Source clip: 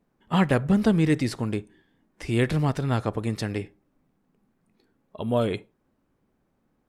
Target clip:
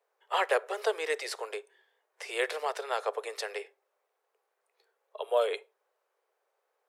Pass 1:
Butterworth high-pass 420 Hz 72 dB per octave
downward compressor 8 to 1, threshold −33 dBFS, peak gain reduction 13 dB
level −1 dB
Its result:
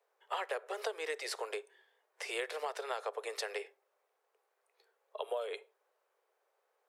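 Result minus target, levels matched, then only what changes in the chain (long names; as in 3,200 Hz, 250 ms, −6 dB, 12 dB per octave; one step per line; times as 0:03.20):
downward compressor: peak gain reduction +13 dB
remove: downward compressor 8 to 1, threshold −33 dBFS, peak gain reduction 13 dB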